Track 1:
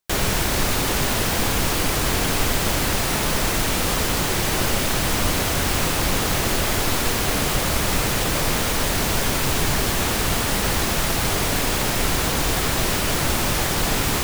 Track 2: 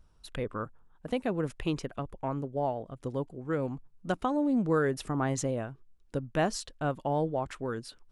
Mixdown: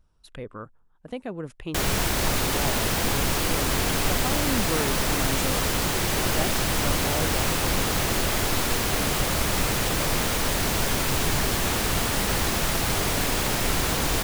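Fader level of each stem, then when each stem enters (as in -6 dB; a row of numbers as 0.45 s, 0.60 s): -3.0 dB, -3.0 dB; 1.65 s, 0.00 s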